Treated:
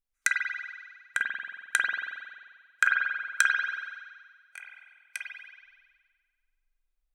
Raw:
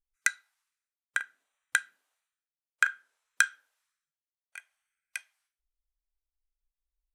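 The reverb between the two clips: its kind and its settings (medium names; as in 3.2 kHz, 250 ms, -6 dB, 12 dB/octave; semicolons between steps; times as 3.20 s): spring tank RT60 1.6 s, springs 45 ms, chirp 70 ms, DRR -2.5 dB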